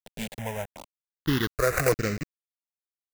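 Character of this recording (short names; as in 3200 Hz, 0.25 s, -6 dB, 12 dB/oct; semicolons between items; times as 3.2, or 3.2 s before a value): a quantiser's noise floor 6-bit, dither none; random-step tremolo 3.5 Hz; aliases and images of a low sample rate 5300 Hz, jitter 20%; notches that jump at a steady rate 2.6 Hz 320–3300 Hz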